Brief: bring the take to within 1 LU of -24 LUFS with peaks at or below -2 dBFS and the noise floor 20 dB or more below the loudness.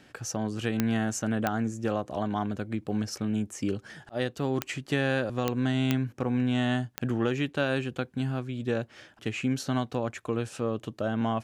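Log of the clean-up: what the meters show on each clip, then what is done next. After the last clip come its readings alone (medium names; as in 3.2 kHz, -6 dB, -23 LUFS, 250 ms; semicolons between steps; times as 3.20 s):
clicks found 6; loudness -30.0 LUFS; peak level -9.0 dBFS; loudness target -24.0 LUFS
-> de-click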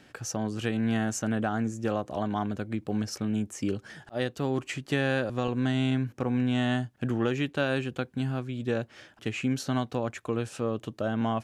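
clicks found 0; loudness -30.0 LUFS; peak level -15.0 dBFS; loudness target -24.0 LUFS
-> trim +6 dB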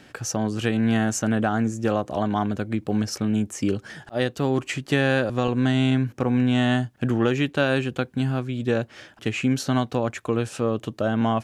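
loudness -24.0 LUFS; peak level -9.0 dBFS; noise floor -53 dBFS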